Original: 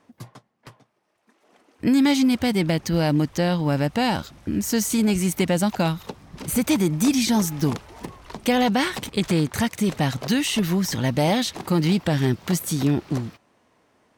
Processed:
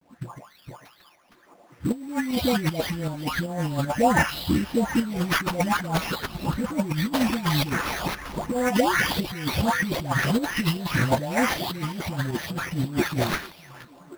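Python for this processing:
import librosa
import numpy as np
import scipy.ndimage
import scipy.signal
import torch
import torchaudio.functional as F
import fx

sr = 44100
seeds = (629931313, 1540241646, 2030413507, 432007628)

y = fx.spec_delay(x, sr, highs='late', ms=653)
y = fx.low_shelf(y, sr, hz=310.0, db=6.0)
y = fx.over_compress(y, sr, threshold_db=-22.0, ratio=-0.5)
y = fx.echo_stepped(y, sr, ms=375, hz=3000.0, octaves=-1.4, feedback_pct=70, wet_db=-11)
y = fx.sample_hold(y, sr, seeds[0], rate_hz=8000.0, jitter_pct=0)
y = fx.tremolo_shape(y, sr, shape='saw_up', hz=2.6, depth_pct=50)
y = fx.quant_companded(y, sr, bits=6)
y = fx.bell_lfo(y, sr, hz=2.5, low_hz=600.0, high_hz=1700.0, db=10)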